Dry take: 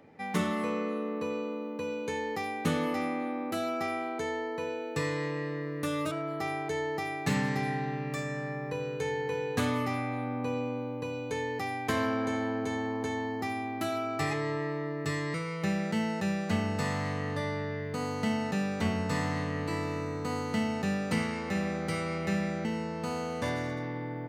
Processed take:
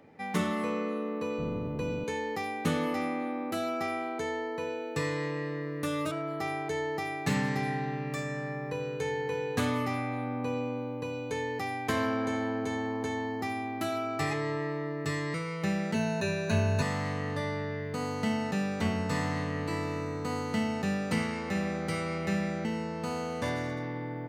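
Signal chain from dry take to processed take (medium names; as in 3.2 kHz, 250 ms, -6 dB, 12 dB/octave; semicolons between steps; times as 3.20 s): 1.38–2.04 s: octave divider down 1 oct, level +4 dB; 15.94–16.82 s: rippled EQ curve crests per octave 1.5, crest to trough 17 dB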